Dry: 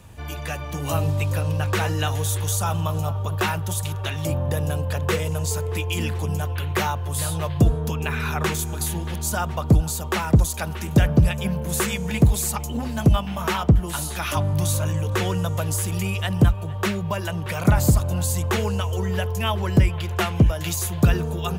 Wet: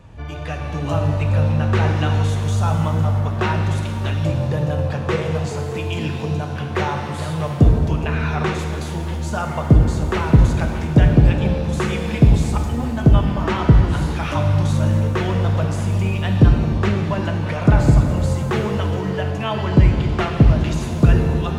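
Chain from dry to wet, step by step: treble shelf 4.8 kHz +10 dB; wow and flutter 20 cents; tape spacing loss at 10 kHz 30 dB; pitch-shifted reverb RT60 1.8 s, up +7 st, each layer -8 dB, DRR 3.5 dB; trim +3.5 dB

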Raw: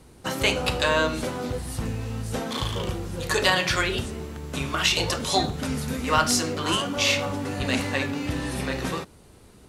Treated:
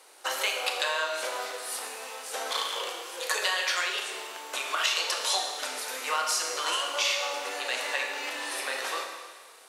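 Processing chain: compression, threshold -28 dBFS, peak gain reduction 12.5 dB; Bessel high-pass 760 Hz, order 6; Schroeder reverb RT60 1.5 s, combs from 27 ms, DRR 3.5 dB; trim +4 dB

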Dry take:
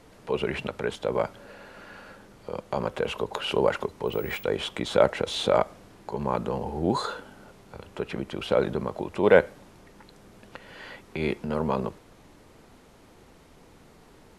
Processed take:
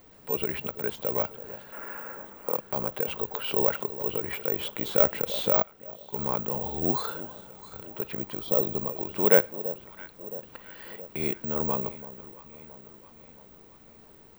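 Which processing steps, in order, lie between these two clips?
1.72–2.57 s: ten-band graphic EQ 125 Hz -12 dB, 250 Hz +7 dB, 500 Hz +5 dB, 1 kHz +10 dB, 2 kHz +8 dB, 4 kHz -10 dB, 8 kHz +9 dB; echo whose repeats swap between lows and highs 335 ms, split 940 Hz, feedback 73%, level -14 dB; careless resampling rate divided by 2×, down filtered, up zero stuff; 5.62–6.13 s: gate -29 dBFS, range -9 dB; 7.09–7.89 s: peaking EQ 8.2 kHz +8 dB 0.74 oct; 8.44–8.97 s: spectral replace 1.3–3 kHz after; trim -4.5 dB

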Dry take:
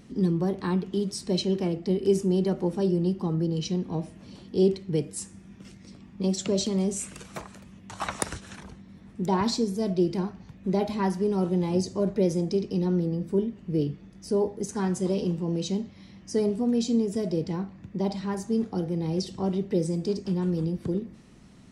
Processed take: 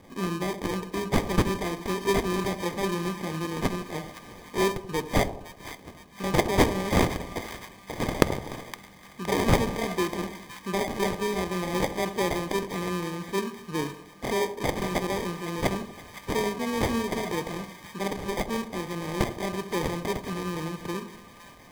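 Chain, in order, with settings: tilt EQ +4 dB/octave; sample-and-hold 32×; small resonant body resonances 1.2/2.1 kHz, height 8 dB; on a send: two-band feedback delay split 980 Hz, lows 81 ms, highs 515 ms, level -12 dB; on the sum: loudspeaker Doppler distortion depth 0.29 ms; trim +2.5 dB

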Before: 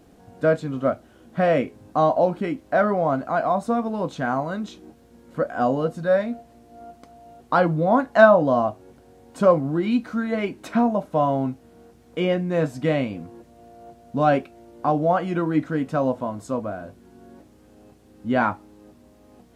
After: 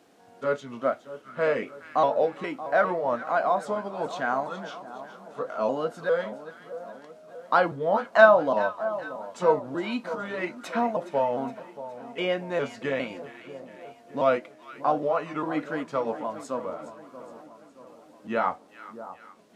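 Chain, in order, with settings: pitch shift switched off and on -2 st, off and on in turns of 406 ms; frequency weighting A; two-band feedback delay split 1.2 kHz, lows 629 ms, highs 416 ms, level -13.5 dB; trim -1 dB

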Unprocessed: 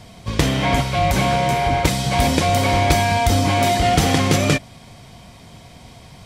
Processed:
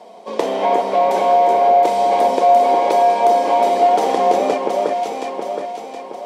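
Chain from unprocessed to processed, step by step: elliptic high-pass 210 Hz, stop band 60 dB; treble shelf 9 kHz -7 dB; echo whose repeats swap between lows and highs 360 ms, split 2 kHz, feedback 67%, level -3.5 dB; compression 2:1, threshold -20 dBFS, peak gain reduction 5 dB; high-order bell 620 Hz +14.5 dB; trim -5.5 dB

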